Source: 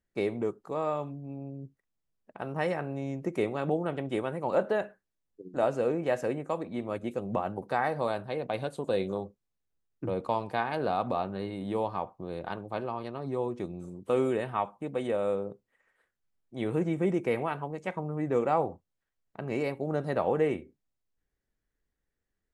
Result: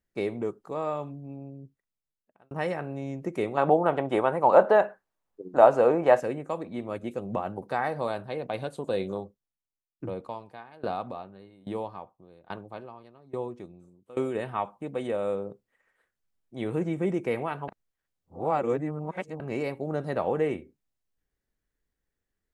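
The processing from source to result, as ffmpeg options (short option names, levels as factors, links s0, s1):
-filter_complex "[0:a]asettb=1/sr,asplit=3[s0][s1][s2];[s0]atrim=end=3.574[s3];[s1]atrim=start=3.57:end=6.2,asetpts=PTS-STARTPTS,afade=t=in:d=0.004:c=qsin,afade=t=out:st=2.626:d=0.004:c=qsin,equalizer=f=890:t=o:w=1.9:g=13.5[s4];[s2]atrim=start=6.196[s5];[s3][s4]acrossfade=d=0.004:c1=hsin:c2=qsin[s6];[s6][s5]acrossfade=d=0.004:c1=qsin:c2=hsin,asplit=3[s7][s8][s9];[s7]afade=t=out:st=9.19:d=0.02[s10];[s8]aeval=exprs='val(0)*pow(10,-21*if(lt(mod(1.2*n/s,1),2*abs(1.2)/1000),1-mod(1.2*n/s,1)/(2*abs(1.2)/1000),(mod(1.2*n/s,1)-2*abs(1.2)/1000)/(1-2*abs(1.2)/1000))/20)':c=same,afade=t=in:st=9.19:d=0.02,afade=t=out:st=14.34:d=0.02[s11];[s9]afade=t=in:st=14.34:d=0.02[s12];[s10][s11][s12]amix=inputs=3:normalize=0,asplit=4[s13][s14][s15][s16];[s13]atrim=end=2.51,asetpts=PTS-STARTPTS,afade=t=out:st=1.26:d=1.25[s17];[s14]atrim=start=2.51:end=17.682,asetpts=PTS-STARTPTS,afade=t=in:d=0.004:c=hsin[s18];[s15]atrim=start=17.678:end=19.402,asetpts=PTS-STARTPTS,areverse[s19];[s16]atrim=start=19.398[s20];[s17][s18]concat=n=2:v=0:a=1[s21];[s21][s19]acrossfade=d=0.004:c1=hsin:c2=hsin[s22];[s22][s20]acrossfade=d=0.004:c1=hsin:c2=hsin"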